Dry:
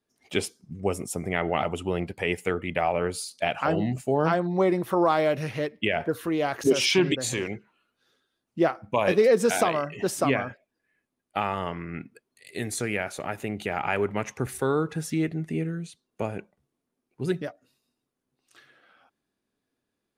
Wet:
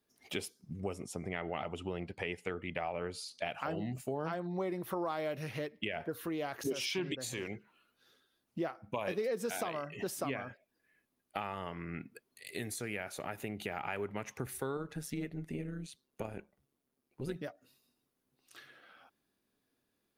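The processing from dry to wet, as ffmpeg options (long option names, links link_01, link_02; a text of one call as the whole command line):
ffmpeg -i in.wav -filter_complex "[0:a]asettb=1/sr,asplit=3[link_01][link_02][link_03];[link_01]atrim=end=0.934[link_04];[link_02]atrim=start=0.93:end=3.45,asetpts=PTS-STARTPTS,afade=type=in:duration=0.004:curve=qsin,afade=type=out:start_time=2.516:duration=0.004:curve=qsin,lowpass=6400[link_05];[link_03]atrim=start=3.446[link_06];[link_04][link_05]acrossfade=duration=0.004:curve1=hsin:curve2=qsin[link_07];[link_07][link_06]acrossfade=duration=0.004:curve1=qsin:curve2=hsin,asettb=1/sr,asplit=3[link_08][link_09][link_10];[link_08]atrim=end=14.774[link_11];[link_09]atrim=start=14.77:end=17.36,asetpts=PTS-STARTPTS,afade=type=in:duration=0.004:curve=qsin,afade=type=out:start_time=2.586:duration=0.004:curve=qsin,tremolo=f=140:d=0.621[link_12];[link_10]atrim=start=17.356[link_13];[link_11][link_12]acrossfade=duration=0.004:curve1=hsin:curve2=qsin[link_14];[link_14][link_13]acrossfade=duration=0.004:curve1=qsin:curve2=hsin,aemphasis=mode=production:type=cd,acompressor=threshold=-40dB:ratio=2.5,equalizer=frequency=8000:width=1.1:gain=-7" out.wav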